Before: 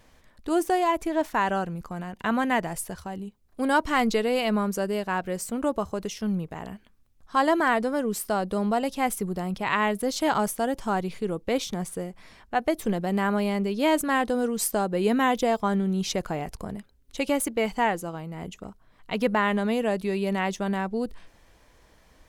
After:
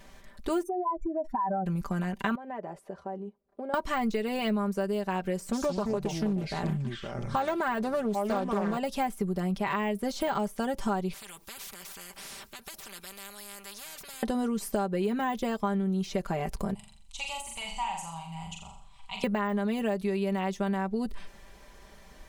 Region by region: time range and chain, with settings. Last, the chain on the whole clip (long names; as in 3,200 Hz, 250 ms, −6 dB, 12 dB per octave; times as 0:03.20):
0:00.63–0:01.66: expanding power law on the bin magnitudes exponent 3 + downward compressor 4 to 1, threshold −30 dBFS
0:02.35–0:03.74: downward compressor 4 to 1, threshold −34 dBFS + resonant band-pass 520 Hz, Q 1.4
0:05.39–0:08.77: delay with pitch and tempo change per echo 138 ms, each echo −5 semitones, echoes 2, each echo −6 dB + highs frequency-modulated by the lows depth 0.33 ms
0:11.13–0:14.23: high-shelf EQ 12,000 Hz +9.5 dB + downward compressor 2 to 1, threshold −41 dBFS + every bin compressed towards the loudest bin 10 to 1
0:16.74–0:19.24: drawn EQ curve 120 Hz 0 dB, 180 Hz −14 dB, 310 Hz −29 dB, 500 Hz −26 dB, 880 Hz +3 dB, 1,700 Hz −17 dB, 2,600 Hz +4 dB, 5,500 Hz 0 dB, 8,100 Hz +7 dB, 13,000 Hz −13 dB + downward compressor 1.5 to 1, threshold −55 dBFS + flutter between parallel walls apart 7.3 metres, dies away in 0.59 s
whole clip: de-essing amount 90%; comb filter 5.1 ms, depth 67%; downward compressor 6 to 1, threshold −30 dBFS; level +3.5 dB